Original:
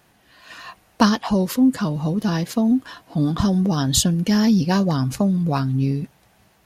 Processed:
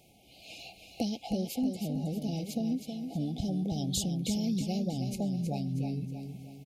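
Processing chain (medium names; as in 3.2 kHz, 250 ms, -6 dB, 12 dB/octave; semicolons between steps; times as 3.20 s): compression 2:1, threshold -38 dBFS, peak gain reduction 15 dB; brick-wall FIR band-stop 850–2100 Hz; feedback delay 318 ms, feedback 43%, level -7 dB; trim -2 dB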